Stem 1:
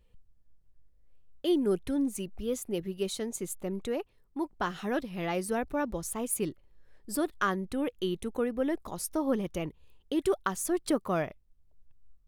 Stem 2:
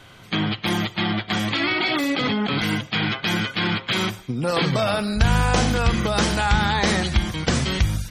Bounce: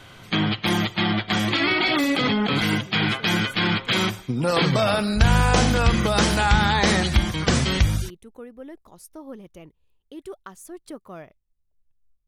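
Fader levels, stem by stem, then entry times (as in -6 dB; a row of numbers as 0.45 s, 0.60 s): -10.0 dB, +1.0 dB; 0.00 s, 0.00 s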